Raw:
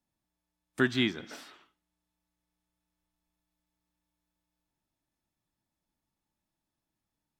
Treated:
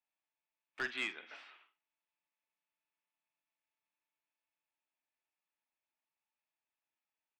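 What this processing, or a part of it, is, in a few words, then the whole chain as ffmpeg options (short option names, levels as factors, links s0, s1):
megaphone: -filter_complex "[0:a]highpass=660,lowpass=3000,equalizer=f=2500:t=o:w=0.53:g=9.5,asoftclip=type=hard:threshold=0.0562,asplit=2[s0][s1];[s1]adelay=45,volume=0.2[s2];[s0][s2]amix=inputs=2:normalize=0,asettb=1/sr,asplit=3[s3][s4][s5];[s3]atrim=end=0.814[s6];[s4]atrim=start=0.81:end=1.36,asetpts=PTS-STARTPTS,afade=t=in:d=0.004:c=qsin,afade=t=out:st=0.546:d=0.004:c=qsin,lowpass=5900[s7];[s5]atrim=start=1.356[s8];[s6][s7]acrossfade=d=0.004:c1=hsin:c2=qsin[s9];[s9][s8]acrossfade=d=0.004:c1=qsin:c2=hsin,volume=0.501"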